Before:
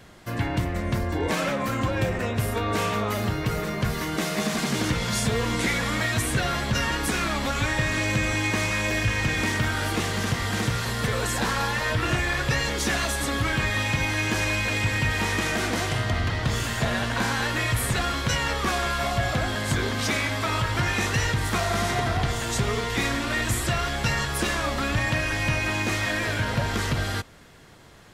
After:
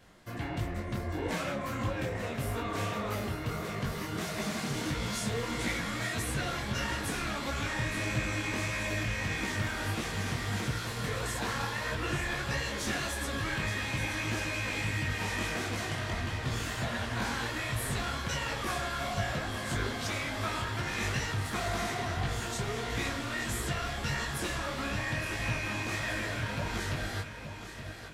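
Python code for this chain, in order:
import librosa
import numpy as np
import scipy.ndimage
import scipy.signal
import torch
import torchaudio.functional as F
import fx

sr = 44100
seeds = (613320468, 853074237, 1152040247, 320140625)

p1 = x + fx.echo_feedback(x, sr, ms=872, feedback_pct=51, wet_db=-10, dry=0)
p2 = fx.detune_double(p1, sr, cents=55)
y = p2 * 10.0 ** (-5.0 / 20.0)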